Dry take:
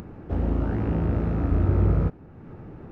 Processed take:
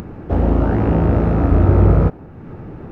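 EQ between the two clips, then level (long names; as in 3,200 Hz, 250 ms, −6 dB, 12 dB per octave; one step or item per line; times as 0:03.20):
dynamic equaliser 710 Hz, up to +5 dB, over −45 dBFS, Q 0.81
+8.5 dB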